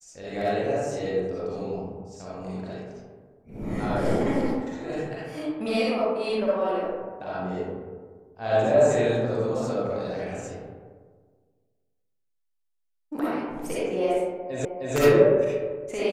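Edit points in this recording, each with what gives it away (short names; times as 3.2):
14.65 repeat of the last 0.31 s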